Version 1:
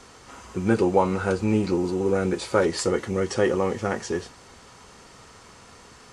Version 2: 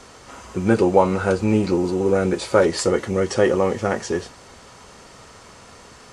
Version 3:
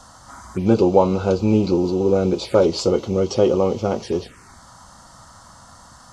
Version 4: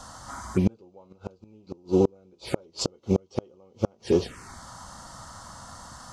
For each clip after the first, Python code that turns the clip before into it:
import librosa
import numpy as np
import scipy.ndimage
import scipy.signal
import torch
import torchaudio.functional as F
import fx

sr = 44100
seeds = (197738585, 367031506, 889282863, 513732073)

y1 = fx.peak_eq(x, sr, hz=600.0, db=4.5, octaves=0.34)
y1 = y1 * librosa.db_to_amplitude(3.5)
y2 = fx.env_phaser(y1, sr, low_hz=370.0, high_hz=1800.0, full_db=-19.5)
y2 = y2 * librosa.db_to_amplitude(2.0)
y3 = fx.gate_flip(y2, sr, shuts_db=-10.0, range_db=-38)
y3 = y3 * librosa.db_to_amplitude(1.5)